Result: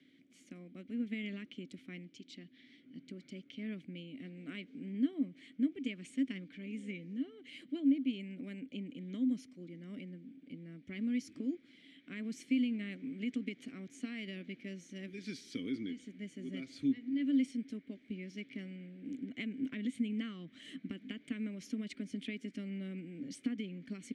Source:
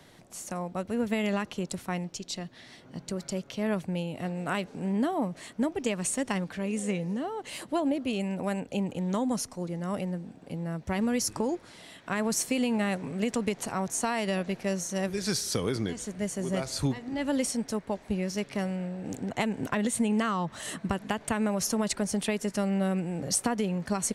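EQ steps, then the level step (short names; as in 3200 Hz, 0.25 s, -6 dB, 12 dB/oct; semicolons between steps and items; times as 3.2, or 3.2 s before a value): vowel filter i; +1.0 dB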